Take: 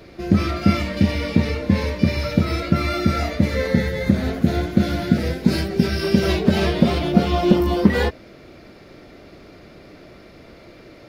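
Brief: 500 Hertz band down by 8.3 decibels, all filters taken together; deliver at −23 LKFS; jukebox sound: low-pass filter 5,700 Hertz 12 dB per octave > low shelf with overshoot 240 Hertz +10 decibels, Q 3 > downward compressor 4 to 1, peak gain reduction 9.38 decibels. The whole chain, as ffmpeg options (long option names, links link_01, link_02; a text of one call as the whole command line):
ffmpeg -i in.wav -af "lowpass=5700,lowshelf=frequency=240:width_type=q:width=3:gain=10,equalizer=frequency=500:width_type=o:gain=-6,acompressor=threshold=-6dB:ratio=4,volume=-9dB" out.wav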